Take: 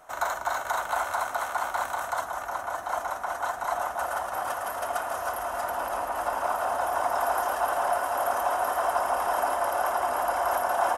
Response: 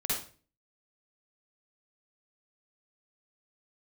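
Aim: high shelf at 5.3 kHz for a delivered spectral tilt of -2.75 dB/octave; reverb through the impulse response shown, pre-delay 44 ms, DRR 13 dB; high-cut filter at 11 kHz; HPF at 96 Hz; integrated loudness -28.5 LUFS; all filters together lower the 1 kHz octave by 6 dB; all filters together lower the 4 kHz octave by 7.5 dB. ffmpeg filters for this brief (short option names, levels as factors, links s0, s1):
-filter_complex "[0:a]highpass=96,lowpass=11000,equalizer=f=1000:t=o:g=-8,equalizer=f=4000:t=o:g=-6.5,highshelf=f=5300:g=-7.5,asplit=2[s0][s1];[1:a]atrim=start_sample=2205,adelay=44[s2];[s1][s2]afir=irnorm=-1:irlink=0,volume=0.112[s3];[s0][s3]amix=inputs=2:normalize=0,volume=1.78"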